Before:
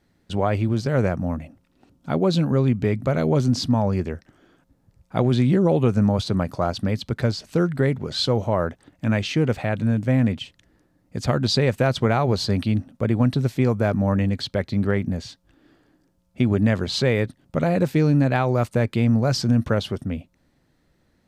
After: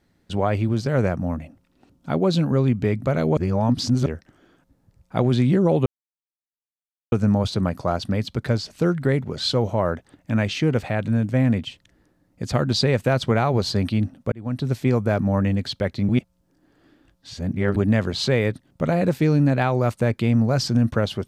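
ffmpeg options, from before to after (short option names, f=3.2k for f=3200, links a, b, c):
-filter_complex "[0:a]asplit=7[a][b][c][d][e][f][g];[a]atrim=end=3.372[h];[b]atrim=start=3.368:end=4.062,asetpts=PTS-STARTPTS,areverse[i];[c]atrim=start=4.058:end=5.86,asetpts=PTS-STARTPTS,afade=t=out:st=1.798:d=0.004:c=hsin,apad=pad_dur=1.26[j];[d]atrim=start=5.86:end=13.06,asetpts=PTS-STARTPTS,afade=t=in:d=0.004:c=hsin,afade=t=out:st=7.196:d=0.004:c=hsin[k];[e]atrim=start=13.06:end=14.832,asetpts=PTS-STARTPTS,afade=t=in:d=0.45[l];[f]atrim=start=14.828:end=16.502,asetpts=PTS-STARTPTS,areverse[m];[g]atrim=start=16.498[n];[h][i]acrossfade=d=0.004:c1=hsin:c2=hsin[o];[j][k][l]concat=n=3:v=0:a=1[p];[o][p]acrossfade=d=0.004:c1=hsin:c2=hsin[q];[q][m]acrossfade=d=0.004:c1=hsin:c2=hsin[r];[r][n]acrossfade=d=0.004:c1=hsin:c2=hsin"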